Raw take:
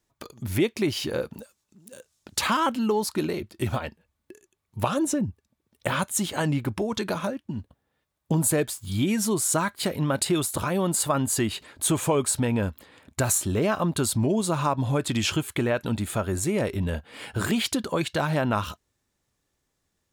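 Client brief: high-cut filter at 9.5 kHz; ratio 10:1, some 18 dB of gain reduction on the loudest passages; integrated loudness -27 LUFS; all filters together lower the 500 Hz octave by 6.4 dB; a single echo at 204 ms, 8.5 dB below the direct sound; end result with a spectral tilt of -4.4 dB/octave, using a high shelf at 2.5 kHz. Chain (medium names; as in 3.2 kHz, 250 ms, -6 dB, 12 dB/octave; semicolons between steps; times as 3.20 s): low-pass 9.5 kHz; peaking EQ 500 Hz -8.5 dB; treble shelf 2.5 kHz -4 dB; compression 10:1, threshold -40 dBFS; delay 204 ms -8.5 dB; trim +16.5 dB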